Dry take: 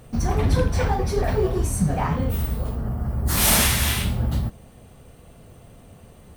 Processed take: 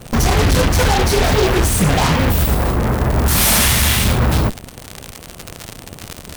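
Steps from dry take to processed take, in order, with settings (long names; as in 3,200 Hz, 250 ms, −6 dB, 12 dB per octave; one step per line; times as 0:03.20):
surface crackle 160 per second −31 dBFS
gain into a clipping stage and back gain 19 dB
harmonic generator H 8 −8 dB, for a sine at −18.5 dBFS
level +8.5 dB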